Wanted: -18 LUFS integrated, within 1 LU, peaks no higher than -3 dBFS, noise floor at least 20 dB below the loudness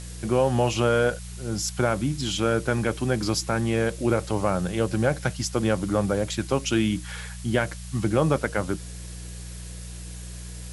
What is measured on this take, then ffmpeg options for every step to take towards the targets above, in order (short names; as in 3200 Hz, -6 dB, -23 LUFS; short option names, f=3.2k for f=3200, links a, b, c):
hum 60 Hz; harmonics up to 180 Hz; hum level -36 dBFS; noise floor -38 dBFS; noise floor target -45 dBFS; loudness -25.0 LUFS; peak -8.0 dBFS; loudness target -18.0 LUFS
-> -af "bandreject=f=60:t=h:w=4,bandreject=f=120:t=h:w=4,bandreject=f=180:t=h:w=4"
-af "afftdn=nr=7:nf=-38"
-af "volume=7dB,alimiter=limit=-3dB:level=0:latency=1"